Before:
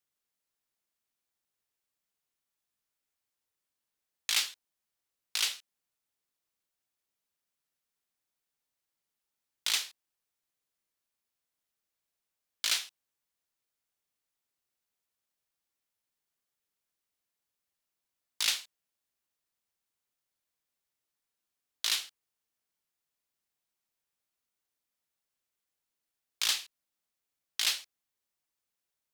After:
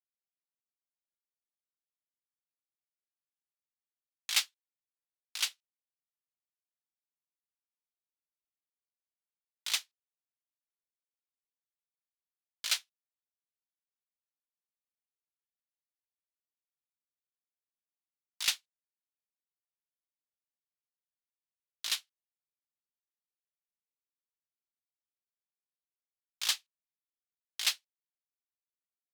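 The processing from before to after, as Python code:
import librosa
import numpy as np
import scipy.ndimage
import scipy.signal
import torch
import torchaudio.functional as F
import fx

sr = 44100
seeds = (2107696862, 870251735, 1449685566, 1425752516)

y = scipy.signal.sosfilt(scipy.signal.butter(4, 550.0, 'highpass', fs=sr, output='sos'), x)
y = 10.0 ** (-16.5 / 20.0) * (np.abs((y / 10.0 ** (-16.5 / 20.0) + 3.0) % 4.0 - 2.0) - 1.0)
y = fx.upward_expand(y, sr, threshold_db=-49.0, expansion=2.5)
y = y * 10.0 ** (2.5 / 20.0)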